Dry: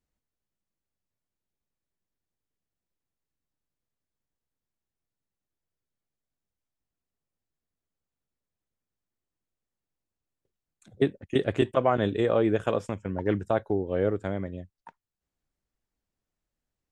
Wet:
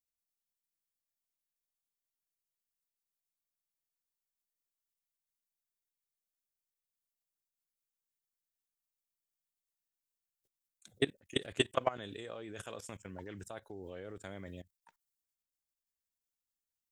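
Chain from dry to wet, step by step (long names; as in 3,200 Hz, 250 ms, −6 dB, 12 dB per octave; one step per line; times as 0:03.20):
output level in coarse steps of 20 dB
first-order pre-emphasis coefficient 0.9
level +13 dB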